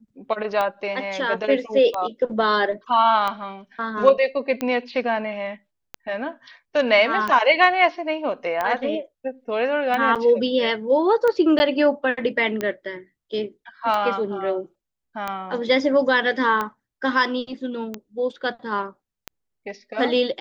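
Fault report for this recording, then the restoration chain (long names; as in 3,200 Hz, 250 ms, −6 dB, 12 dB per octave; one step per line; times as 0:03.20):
scratch tick 45 rpm −12 dBFS
0:10.15–0:10.16: drop-out 7.2 ms
0:11.59–0:11.60: drop-out 10 ms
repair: click removal
repair the gap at 0:10.15, 7.2 ms
repair the gap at 0:11.59, 10 ms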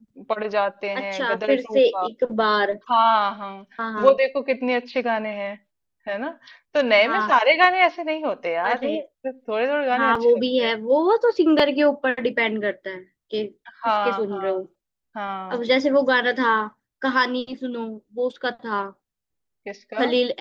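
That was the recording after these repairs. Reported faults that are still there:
none of them is left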